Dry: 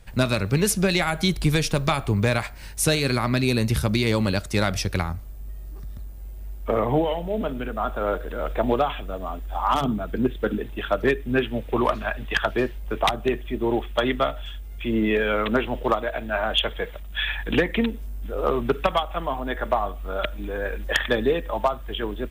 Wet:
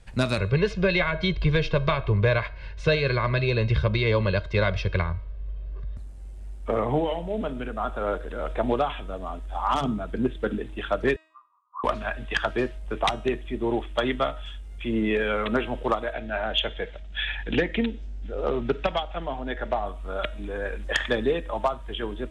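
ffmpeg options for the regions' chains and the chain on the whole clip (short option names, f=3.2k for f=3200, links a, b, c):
-filter_complex "[0:a]asettb=1/sr,asplit=3[a][b][c];[a]atrim=end=0.384[d];[b]atrim=start=0.38:end=5.97,asetpts=PTS-STARTPTS,afade=t=in:d=0.004:c=qsin,afade=t=out:st=5.586:d=0.004:c=qsin,lowpass=f=3.6k:w=0.5412,lowpass=f=3.6k:w=1.3066,aecho=1:1:1.9:0.84,atrim=end_sample=246519[e];[c]atrim=start=5.966[f];[d][e]acrossfade=d=0.004:c1=hsin:c2=qsin[g];[g][f]acrossfade=d=0.004:c1=qsin:c2=hsin,asettb=1/sr,asplit=3[h][i][j];[h]atrim=end=11.164[k];[i]atrim=start=11.16:end=11.84,asetpts=PTS-STARTPTS,afade=t=in:d=0.004:c=qsin,afade=t=out:st=0.676:d=0.004:c=qsin,asuperpass=centerf=1100:order=12:qfactor=4.2,tremolo=f=210:d=0.261[l];[j]atrim=start=11.836[m];[k][l]acrossfade=d=0.004:c1=hsin:c2=qsin[n];[n][m]acrossfade=d=0.004:c1=qsin:c2=hsin,asettb=1/sr,asplit=3[o][p][q];[o]atrim=end=16.134[r];[p]atrim=start=16.13:end=19.86,asetpts=PTS-STARTPTS,afade=t=in:d=0.004:c=qsin,afade=t=out:st=3.726:d=0.004:c=qsin,lowpass=f=6.4k:w=0.5412,lowpass=f=6.4k:w=1.3066,equalizer=f=1.1k:t=o:w=0.39:g=-8[s];[q]atrim=start=19.856[t];[r][s]acrossfade=d=0.004:c1=hsin:c2=qsin[u];[u][t]acrossfade=d=0.004:c1=qsin:c2=hsin,lowpass=f=9.8k:w=0.5412,lowpass=f=9.8k:w=1.3066,bandreject=f=316.4:t=h:w=4,bandreject=f=632.8:t=h:w=4,bandreject=f=949.2:t=h:w=4,bandreject=f=1.2656k:t=h:w=4,bandreject=f=1.582k:t=h:w=4,bandreject=f=1.8984k:t=h:w=4,bandreject=f=2.2148k:t=h:w=4,bandreject=f=2.5312k:t=h:w=4,bandreject=f=2.8476k:t=h:w=4,bandreject=f=3.164k:t=h:w=4,bandreject=f=3.4804k:t=h:w=4,bandreject=f=3.7968k:t=h:w=4,bandreject=f=4.1132k:t=h:w=4,bandreject=f=4.4296k:t=h:w=4,bandreject=f=4.746k:t=h:w=4,bandreject=f=5.0624k:t=h:w=4,bandreject=f=5.3788k:t=h:w=4,bandreject=f=5.6952k:t=h:w=4,bandreject=f=6.0116k:t=h:w=4,bandreject=f=6.328k:t=h:w=4,bandreject=f=6.6444k:t=h:w=4,bandreject=f=6.9608k:t=h:w=4,bandreject=f=7.2772k:t=h:w=4,bandreject=f=7.5936k:t=h:w=4,bandreject=f=7.91k:t=h:w=4,bandreject=f=8.2264k:t=h:w=4,bandreject=f=8.5428k:t=h:w=4,bandreject=f=8.8592k:t=h:w=4,bandreject=f=9.1756k:t=h:w=4,bandreject=f=9.492k:t=h:w=4,volume=-2.5dB"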